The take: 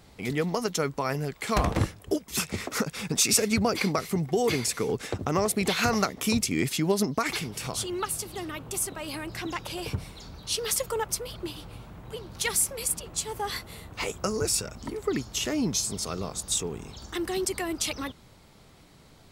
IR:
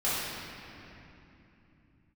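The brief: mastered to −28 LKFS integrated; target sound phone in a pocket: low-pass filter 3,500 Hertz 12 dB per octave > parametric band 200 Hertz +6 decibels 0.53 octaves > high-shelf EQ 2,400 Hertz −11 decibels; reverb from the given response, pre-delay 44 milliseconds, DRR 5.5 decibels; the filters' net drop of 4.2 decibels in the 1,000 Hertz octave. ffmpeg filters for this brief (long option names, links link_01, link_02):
-filter_complex "[0:a]equalizer=frequency=1000:width_type=o:gain=-3.5,asplit=2[link_01][link_02];[1:a]atrim=start_sample=2205,adelay=44[link_03];[link_02][link_03]afir=irnorm=-1:irlink=0,volume=-16.5dB[link_04];[link_01][link_04]amix=inputs=2:normalize=0,lowpass=3500,equalizer=frequency=200:width_type=o:width=0.53:gain=6,highshelf=frequency=2400:gain=-11,volume=0.5dB"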